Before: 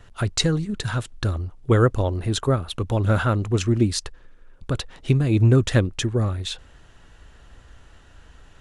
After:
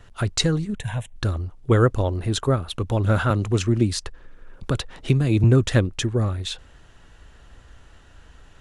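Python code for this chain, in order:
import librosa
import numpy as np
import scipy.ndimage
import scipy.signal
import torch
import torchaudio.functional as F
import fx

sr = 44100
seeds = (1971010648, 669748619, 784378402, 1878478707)

y = fx.fixed_phaser(x, sr, hz=1300.0, stages=6, at=(0.75, 1.16))
y = fx.band_squash(y, sr, depth_pct=40, at=(3.3, 5.44))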